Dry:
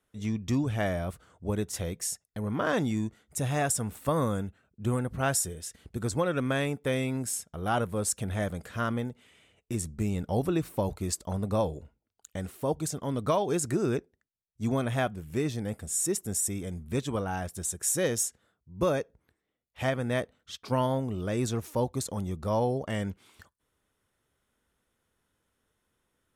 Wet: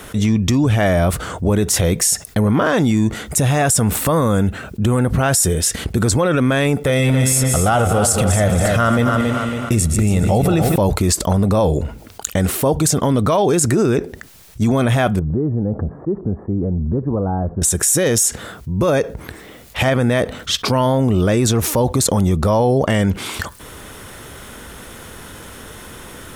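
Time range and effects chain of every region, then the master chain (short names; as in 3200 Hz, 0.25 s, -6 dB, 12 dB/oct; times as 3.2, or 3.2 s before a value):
6.77–10.76 regenerating reverse delay 0.111 s, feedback 48%, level -10.5 dB + comb 1.5 ms, depth 34% + feedback echo 0.277 s, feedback 32%, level -10.5 dB
15.19–17.62 compressor 3:1, threshold -41 dBFS + Gaussian blur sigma 9.6 samples
whole clip: maximiser +25.5 dB; fast leveller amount 50%; gain -7 dB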